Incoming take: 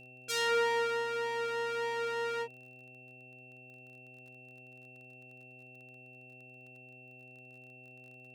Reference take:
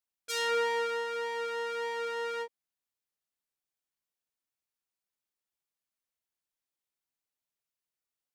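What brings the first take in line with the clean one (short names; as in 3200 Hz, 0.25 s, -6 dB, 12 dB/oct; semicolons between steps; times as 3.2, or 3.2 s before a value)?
de-click; de-hum 126.8 Hz, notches 6; notch 2700 Hz, Q 30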